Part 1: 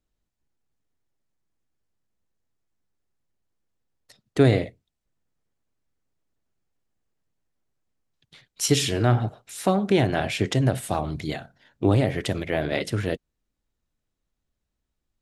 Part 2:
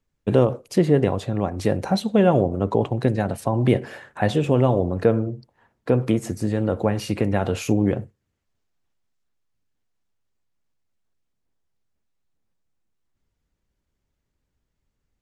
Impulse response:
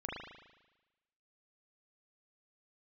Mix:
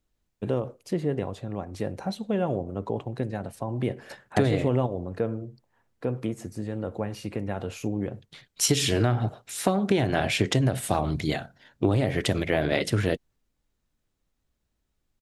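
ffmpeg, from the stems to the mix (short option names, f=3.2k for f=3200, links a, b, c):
-filter_complex "[0:a]volume=3dB,asplit=2[a][b];[1:a]adelay=150,volume=-0.5dB[c];[b]apad=whole_len=677399[d];[c][d]sidechaingate=range=-9dB:threshold=-50dB:ratio=16:detection=peak[e];[a][e]amix=inputs=2:normalize=0,acompressor=threshold=-18dB:ratio=12"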